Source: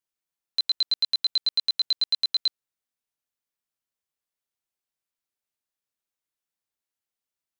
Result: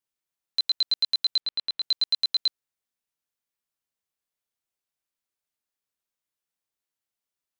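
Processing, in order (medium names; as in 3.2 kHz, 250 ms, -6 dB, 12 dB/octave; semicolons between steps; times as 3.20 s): 1.40–1.82 s: low-pass 3.3 kHz 12 dB/octave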